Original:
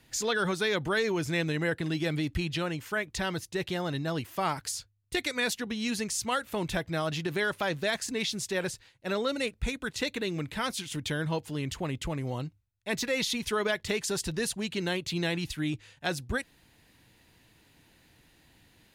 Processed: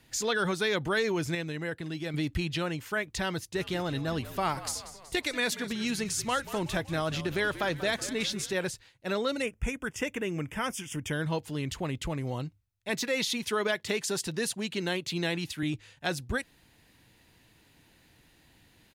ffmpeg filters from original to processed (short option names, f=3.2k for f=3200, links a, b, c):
-filter_complex "[0:a]asplit=3[a][b][c];[a]afade=t=out:st=3.54:d=0.02[d];[b]asplit=7[e][f][g][h][i][j][k];[f]adelay=187,afreqshift=-59,volume=-14dB[l];[g]adelay=374,afreqshift=-118,volume=-19.2dB[m];[h]adelay=561,afreqshift=-177,volume=-24.4dB[n];[i]adelay=748,afreqshift=-236,volume=-29.6dB[o];[j]adelay=935,afreqshift=-295,volume=-34.8dB[p];[k]adelay=1122,afreqshift=-354,volume=-40dB[q];[e][l][m][n][o][p][q]amix=inputs=7:normalize=0,afade=t=in:st=3.54:d=0.02,afade=t=out:st=8.53:d=0.02[r];[c]afade=t=in:st=8.53:d=0.02[s];[d][r][s]amix=inputs=3:normalize=0,asettb=1/sr,asplit=3[t][u][v];[t]atrim=end=9.424[w];[u]atrim=start=9.42:end=11.13,asetpts=PTS-STARTPTS,afade=t=in:d=0.004:c=qsin,afade=t=out:st=1.706:d=0.004:c=qsin,asuperstop=centerf=4100:order=4:qfactor=1.9[x];[v]atrim=start=11.126[y];[w][x]acrossfade=d=0.004:c1=hsin:c2=qsin[z];[z][y]acrossfade=d=0.004:c1=qsin:c2=hsin,asettb=1/sr,asplit=3[aa][ab][ac];[aa]atrim=end=12.894[ad];[ab]atrim=start=12.89:end=15.63,asetpts=PTS-STARTPTS,afade=t=in:d=0.004:c=qsin,afade=t=out:st=2.736:d=0.004:c=qsin,highpass=140[ae];[ac]atrim=start=15.626[af];[ad][ae]acrossfade=d=0.004:c1=hsin:c2=qsin[ag];[ag][af]acrossfade=d=0.004:c1=qsin:c2=hsin,asplit=3[ah][ai][aj];[ah]atrim=end=1.352[ak];[ai]atrim=start=1.348:end=2.142,asetpts=PTS-STARTPTS,volume=-5.5dB[al];[aj]atrim=start=2.138[am];[ak][al]acrossfade=d=0.004:c1=hsin:c2=hsin[an];[an][am]acrossfade=d=0.004:c1=hsin:c2=hsin"